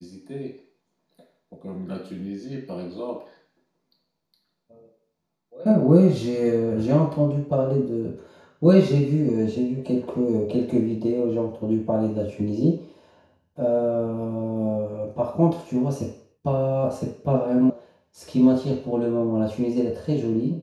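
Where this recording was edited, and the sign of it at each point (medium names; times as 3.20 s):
17.70 s: sound stops dead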